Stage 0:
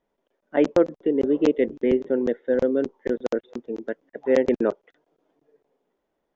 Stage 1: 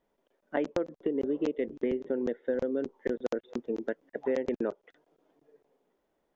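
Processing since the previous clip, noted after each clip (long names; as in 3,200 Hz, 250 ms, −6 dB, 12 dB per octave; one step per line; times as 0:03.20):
downward compressor 6 to 1, threshold −27 dBFS, peak gain reduction 14 dB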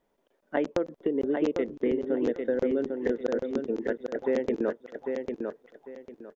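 repeating echo 799 ms, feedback 25%, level −5 dB
level +2.5 dB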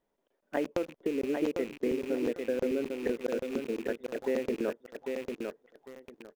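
loose part that buzzes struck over −46 dBFS, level −33 dBFS
in parallel at −8.5 dB: bit reduction 6 bits
on the sum: level −6.5 dB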